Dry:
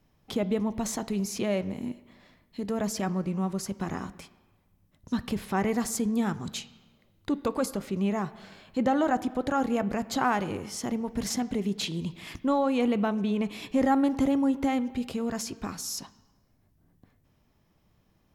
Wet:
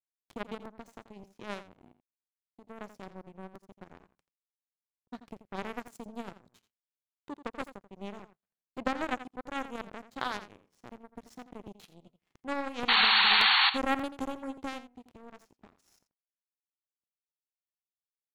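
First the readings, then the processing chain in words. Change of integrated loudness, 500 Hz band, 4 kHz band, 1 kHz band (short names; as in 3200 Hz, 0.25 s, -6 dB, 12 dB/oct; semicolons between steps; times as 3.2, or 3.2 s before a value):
+1.5 dB, -11.5 dB, +10.0 dB, -3.0 dB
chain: in parallel at -1.5 dB: compressor, threshold -39 dBFS, peak gain reduction 19 dB; on the sum: power-law curve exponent 3; painted sound noise, 12.88–13.7, 740–4500 Hz -23 dBFS; on a send: echo 85 ms -13 dB; on the sum: crackling interface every 0.58 s, samples 128, repeat, from 0.65; mismatched tape noise reduction decoder only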